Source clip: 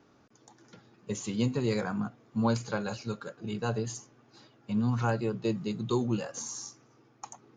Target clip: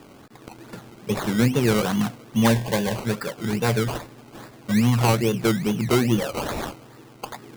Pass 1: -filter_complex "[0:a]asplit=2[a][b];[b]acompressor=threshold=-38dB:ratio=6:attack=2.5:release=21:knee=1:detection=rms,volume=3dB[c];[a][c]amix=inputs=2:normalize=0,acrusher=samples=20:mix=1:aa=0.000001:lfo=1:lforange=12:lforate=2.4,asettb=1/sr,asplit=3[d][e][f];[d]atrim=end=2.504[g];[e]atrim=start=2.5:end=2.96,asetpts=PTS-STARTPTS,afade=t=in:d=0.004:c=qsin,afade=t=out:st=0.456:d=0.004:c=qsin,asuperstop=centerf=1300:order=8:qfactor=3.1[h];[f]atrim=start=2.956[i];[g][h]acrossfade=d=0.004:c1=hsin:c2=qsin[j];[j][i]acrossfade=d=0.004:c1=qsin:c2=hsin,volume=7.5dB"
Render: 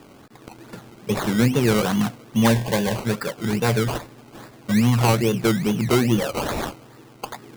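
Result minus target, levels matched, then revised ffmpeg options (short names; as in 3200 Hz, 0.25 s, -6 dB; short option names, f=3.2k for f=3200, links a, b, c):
compressor: peak gain reduction -6 dB
-filter_complex "[0:a]asplit=2[a][b];[b]acompressor=threshold=-45dB:ratio=6:attack=2.5:release=21:knee=1:detection=rms,volume=3dB[c];[a][c]amix=inputs=2:normalize=0,acrusher=samples=20:mix=1:aa=0.000001:lfo=1:lforange=12:lforate=2.4,asettb=1/sr,asplit=3[d][e][f];[d]atrim=end=2.504[g];[e]atrim=start=2.5:end=2.96,asetpts=PTS-STARTPTS,afade=t=in:d=0.004:c=qsin,afade=t=out:st=0.456:d=0.004:c=qsin,asuperstop=centerf=1300:order=8:qfactor=3.1[h];[f]atrim=start=2.956[i];[g][h]acrossfade=d=0.004:c1=hsin:c2=qsin[j];[j][i]acrossfade=d=0.004:c1=qsin:c2=hsin,volume=7.5dB"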